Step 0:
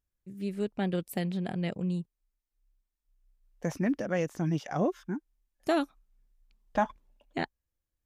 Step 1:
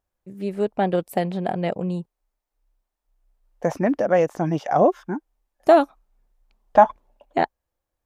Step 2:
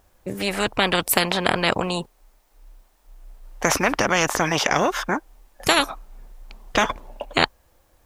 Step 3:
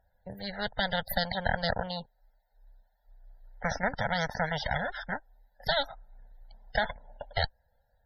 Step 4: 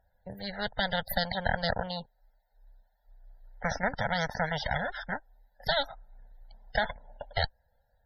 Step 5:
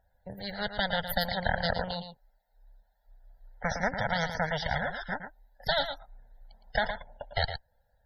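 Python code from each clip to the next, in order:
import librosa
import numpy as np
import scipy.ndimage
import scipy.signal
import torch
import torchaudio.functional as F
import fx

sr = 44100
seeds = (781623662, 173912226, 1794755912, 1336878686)

y1 = fx.peak_eq(x, sr, hz=720.0, db=14.0, octaves=1.9)
y1 = y1 * 10.0 ** (2.0 / 20.0)
y2 = fx.spectral_comp(y1, sr, ratio=4.0)
y3 = fx.cheby_harmonics(y2, sr, harmonics=(6, 8), levels_db=(-8, -22), full_scale_db=-1.0)
y3 = fx.fixed_phaser(y3, sr, hz=1700.0, stages=8)
y3 = fx.spec_topn(y3, sr, count=64)
y3 = y3 * 10.0 ** (-9.0 / 20.0)
y4 = y3
y5 = y4 + 10.0 ** (-9.0 / 20.0) * np.pad(y4, (int(113 * sr / 1000.0), 0))[:len(y4)]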